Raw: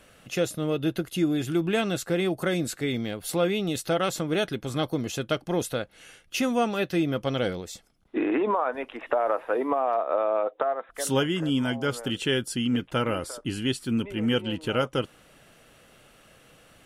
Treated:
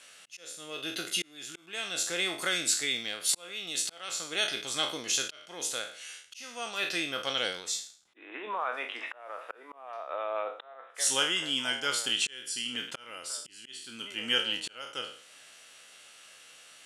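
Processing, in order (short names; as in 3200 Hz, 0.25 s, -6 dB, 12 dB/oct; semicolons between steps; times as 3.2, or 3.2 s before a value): spectral trails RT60 0.45 s; auto swell 0.656 s; weighting filter ITU-R 468; gain -4.5 dB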